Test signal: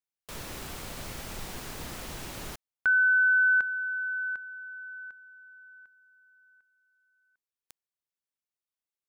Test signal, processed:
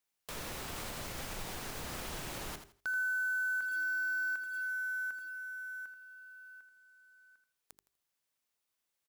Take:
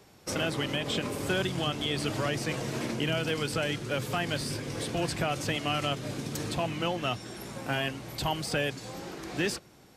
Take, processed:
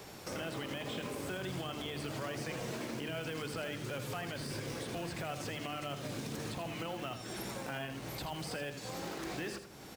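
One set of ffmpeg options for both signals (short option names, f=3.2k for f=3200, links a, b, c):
-filter_complex "[0:a]bandreject=f=50:t=h:w=6,bandreject=f=100:t=h:w=6,bandreject=f=150:t=h:w=6,bandreject=f=200:t=h:w=6,bandreject=f=250:t=h:w=6,bandreject=f=300:t=h:w=6,bandreject=f=350:t=h:w=6,bandreject=f=400:t=h:w=6,acrossover=split=2500[a][b];[b]acompressor=threshold=-40dB:ratio=4:attack=1:release=60[c];[a][c]amix=inputs=2:normalize=0,lowshelf=f=260:g=-2.5,alimiter=limit=-23.5dB:level=0:latency=1:release=19,acompressor=threshold=-43dB:ratio=5:attack=0.21:release=554:knee=6:detection=peak,acrusher=bits=4:mode=log:mix=0:aa=0.000001,asplit=2[d][e];[e]aecho=0:1:82|164|246:0.335|0.0837|0.0209[f];[d][f]amix=inputs=2:normalize=0,volume=8dB"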